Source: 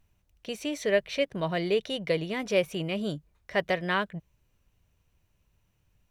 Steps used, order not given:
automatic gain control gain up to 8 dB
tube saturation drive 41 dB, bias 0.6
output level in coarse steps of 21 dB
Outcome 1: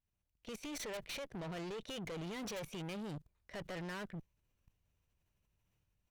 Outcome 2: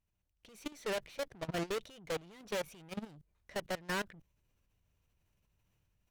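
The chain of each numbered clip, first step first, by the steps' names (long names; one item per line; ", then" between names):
output level in coarse steps, then automatic gain control, then tube saturation
tube saturation, then output level in coarse steps, then automatic gain control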